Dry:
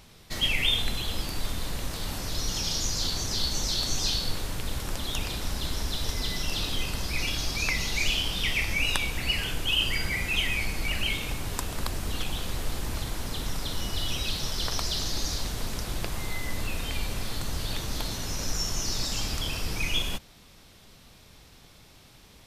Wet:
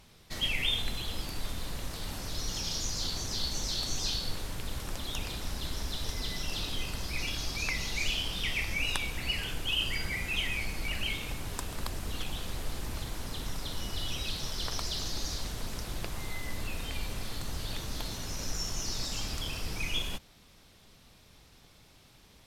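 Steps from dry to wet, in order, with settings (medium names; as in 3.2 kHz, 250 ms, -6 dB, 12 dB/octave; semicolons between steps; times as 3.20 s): trim -5 dB; Nellymoser 88 kbps 44.1 kHz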